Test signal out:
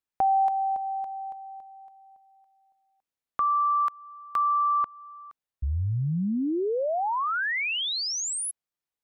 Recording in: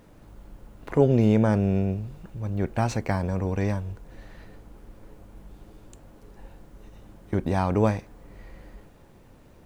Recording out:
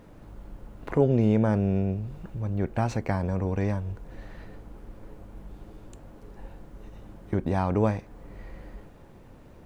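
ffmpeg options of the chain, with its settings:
ffmpeg -i in.wav -filter_complex "[0:a]highshelf=frequency=3100:gain=-6.5,asplit=2[link_01][link_02];[link_02]acompressor=threshold=-33dB:ratio=6,volume=0.5dB[link_03];[link_01][link_03]amix=inputs=2:normalize=0,volume=-3.5dB" out.wav

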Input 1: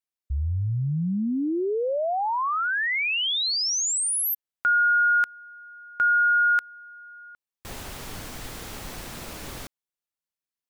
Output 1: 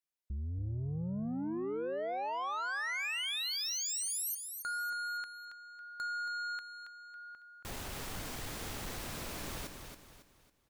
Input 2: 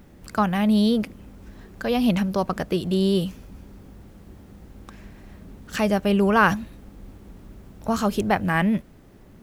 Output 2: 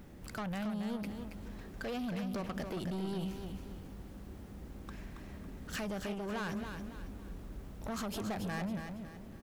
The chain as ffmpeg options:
ffmpeg -i in.wav -af "acompressor=threshold=-30dB:ratio=6:attack=22:release=62:knee=6:detection=peak,asoftclip=type=tanh:threshold=-32dB,aecho=1:1:276|552|828|1104:0.447|0.165|0.0612|0.0226,volume=-3dB" out.wav

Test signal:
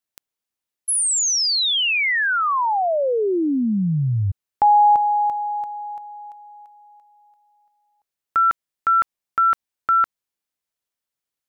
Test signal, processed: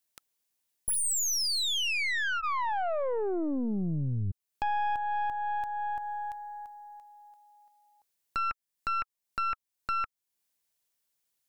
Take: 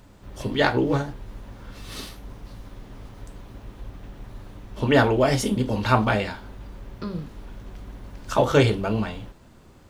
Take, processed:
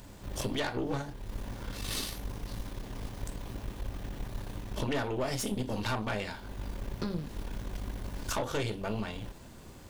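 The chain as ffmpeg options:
ffmpeg -i in.wav -af "highshelf=frequency=4700:gain=7.5,bandreject=frequency=1300:width=14,acompressor=threshold=-32dB:ratio=4:attack=22:release=403:knee=1:detection=rms,aeval=exprs='(tanh(31.6*val(0)+0.65)-tanh(0.65))/31.6':channel_layout=same,volume=4.5dB" out.wav

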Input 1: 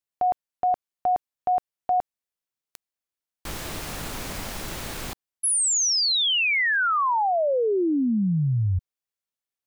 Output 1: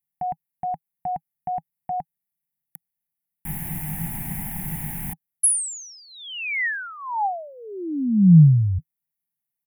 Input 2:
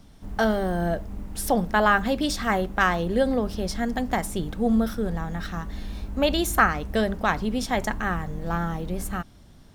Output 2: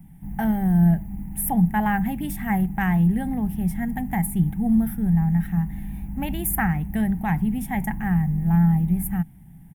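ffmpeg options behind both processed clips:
ffmpeg -i in.wav -af "firequalizer=gain_entry='entry(100,0);entry(160,15);entry(230,1);entry(530,-22);entry(810,2);entry(1200,-18);entry(1900,0);entry(4400,-27);entry(11000,9)':delay=0.05:min_phase=1" out.wav

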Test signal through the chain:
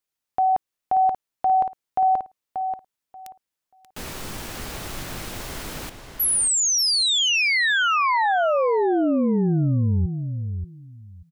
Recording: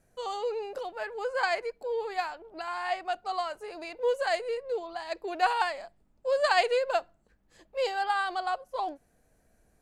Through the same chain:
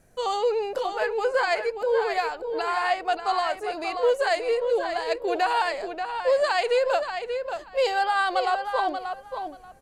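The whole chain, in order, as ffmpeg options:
ffmpeg -i in.wav -filter_complex "[0:a]alimiter=limit=-22.5dB:level=0:latency=1:release=142,asplit=2[link_01][link_02];[link_02]adelay=584,lowpass=frequency=4900:poles=1,volume=-7dB,asplit=2[link_03][link_04];[link_04]adelay=584,lowpass=frequency=4900:poles=1,volume=0.18,asplit=2[link_05][link_06];[link_06]adelay=584,lowpass=frequency=4900:poles=1,volume=0.18[link_07];[link_03][link_05][link_07]amix=inputs=3:normalize=0[link_08];[link_01][link_08]amix=inputs=2:normalize=0,volume=8dB" out.wav

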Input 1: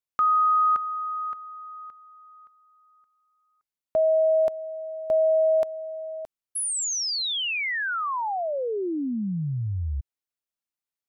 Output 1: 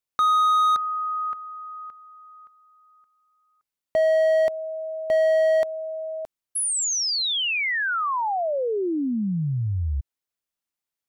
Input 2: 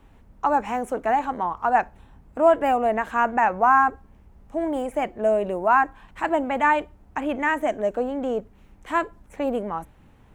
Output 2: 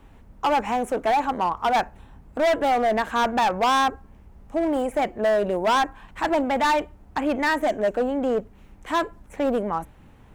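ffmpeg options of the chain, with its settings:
ffmpeg -i in.wav -af "asoftclip=type=hard:threshold=-20dB,volume=3dB" out.wav

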